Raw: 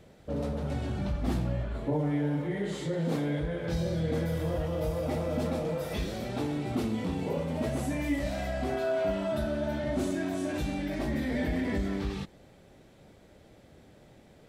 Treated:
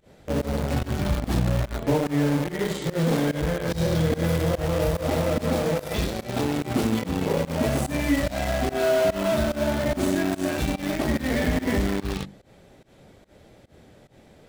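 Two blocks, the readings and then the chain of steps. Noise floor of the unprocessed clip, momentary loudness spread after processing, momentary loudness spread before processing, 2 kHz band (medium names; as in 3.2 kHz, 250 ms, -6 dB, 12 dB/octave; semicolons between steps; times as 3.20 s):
-57 dBFS, 4 LU, 4 LU, +8.5 dB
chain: hum notches 50/100/150/200/250/300/350 Hz; vibrato 1.2 Hz 18 cents; in parallel at -6.5 dB: bit crusher 5-bit; on the sum: volume shaper 145 bpm, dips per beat 1, -23 dB, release 128 ms; trim +4.5 dB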